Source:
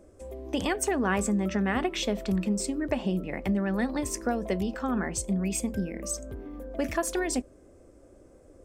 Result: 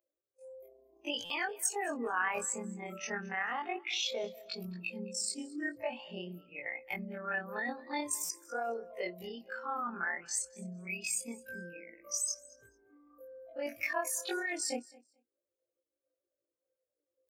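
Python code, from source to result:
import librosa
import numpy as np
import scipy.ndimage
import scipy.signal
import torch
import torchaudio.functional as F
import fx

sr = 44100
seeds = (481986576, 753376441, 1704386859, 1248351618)

p1 = fx.bin_expand(x, sr, power=2.0)
p2 = scipy.signal.sosfilt(scipy.signal.butter(2, 780.0, 'highpass', fs=sr, output='sos'), p1)
p3 = fx.over_compress(p2, sr, threshold_db=-43.0, ratio=-0.5)
p4 = p2 + (p3 * librosa.db_to_amplitude(3.0))
p5 = fx.stretch_grains(p4, sr, factor=2.0, grain_ms=69.0)
p6 = p5 + fx.echo_feedback(p5, sr, ms=217, feedback_pct=16, wet_db=-22.5, dry=0)
y = fx.buffer_glitch(p6, sr, at_s=(1.25, 8.24), block=256, repeats=8)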